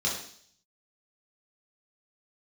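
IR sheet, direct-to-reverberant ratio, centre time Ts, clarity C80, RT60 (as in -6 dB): -4.5 dB, 38 ms, 8.0 dB, 0.55 s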